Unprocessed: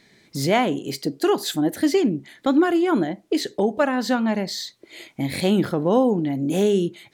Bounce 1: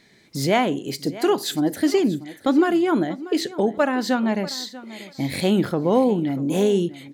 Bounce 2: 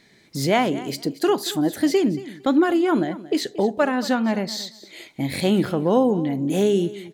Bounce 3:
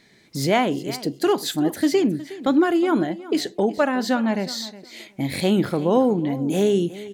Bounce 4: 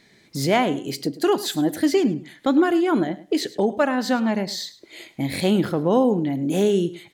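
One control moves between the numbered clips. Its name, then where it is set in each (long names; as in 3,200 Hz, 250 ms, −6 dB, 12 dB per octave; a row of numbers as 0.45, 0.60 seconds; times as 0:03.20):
repeating echo, delay time: 639, 228, 364, 105 milliseconds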